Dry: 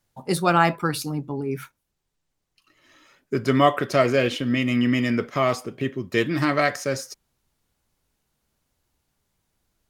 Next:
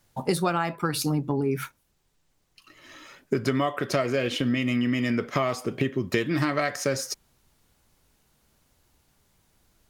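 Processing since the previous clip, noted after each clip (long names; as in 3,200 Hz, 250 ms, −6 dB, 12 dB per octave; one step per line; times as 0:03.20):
downward compressor 16 to 1, threshold −29 dBFS, peak gain reduction 18.5 dB
level +8 dB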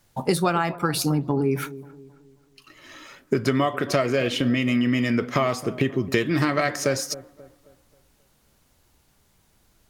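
delay with a low-pass on its return 268 ms, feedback 40%, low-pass 1,000 Hz, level −16 dB
level +3 dB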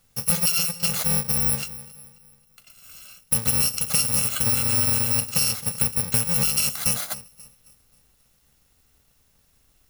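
samples in bit-reversed order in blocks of 128 samples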